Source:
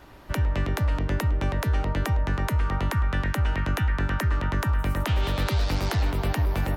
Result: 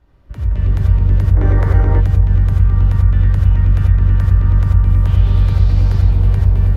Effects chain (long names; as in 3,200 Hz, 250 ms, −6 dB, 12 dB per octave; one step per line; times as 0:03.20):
on a send: feedback echo with a low-pass in the loop 171 ms, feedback 66%, low-pass 820 Hz, level −6 dB
on the sum: automatic gain control gain up to 12 dB
RIAA equalisation playback
reverb whose tail is shaped and stops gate 110 ms rising, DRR −0.5 dB
gain on a spectral selection 0:01.36–0:02.00, 270–2,300 Hz +10 dB
high-shelf EQ 3,300 Hz +10 dB
level −17.5 dB